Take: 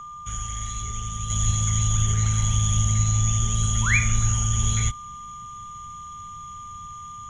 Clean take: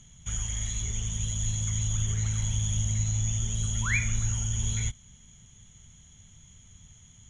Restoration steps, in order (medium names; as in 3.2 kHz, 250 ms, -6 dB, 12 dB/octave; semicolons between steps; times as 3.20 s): band-stop 1.2 kHz, Q 30; de-plosive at 1.46 s; gain correction -6.5 dB, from 1.30 s